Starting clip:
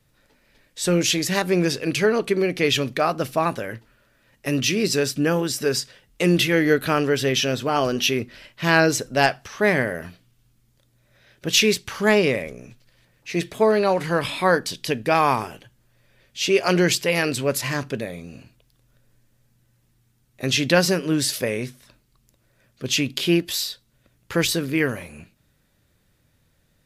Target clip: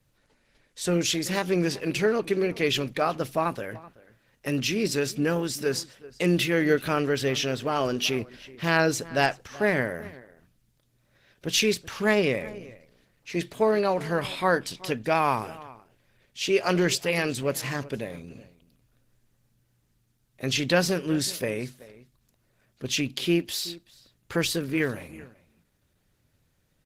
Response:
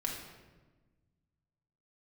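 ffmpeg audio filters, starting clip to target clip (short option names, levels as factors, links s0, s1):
-filter_complex "[0:a]asplit=2[s0][s1];[s1]adelay=379,volume=0.112,highshelf=f=4000:g=-8.53[s2];[s0][s2]amix=inputs=2:normalize=0,volume=0.631" -ar 48000 -c:a libopus -b:a 16k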